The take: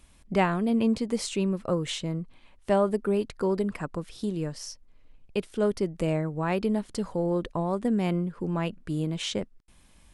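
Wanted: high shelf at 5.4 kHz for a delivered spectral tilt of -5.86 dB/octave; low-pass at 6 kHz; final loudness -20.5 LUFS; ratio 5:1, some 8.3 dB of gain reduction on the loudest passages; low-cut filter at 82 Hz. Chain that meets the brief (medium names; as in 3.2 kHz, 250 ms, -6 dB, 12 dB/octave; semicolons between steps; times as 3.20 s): high-pass 82 Hz; low-pass 6 kHz; treble shelf 5.4 kHz -6.5 dB; compression 5:1, threshold -28 dBFS; trim +13 dB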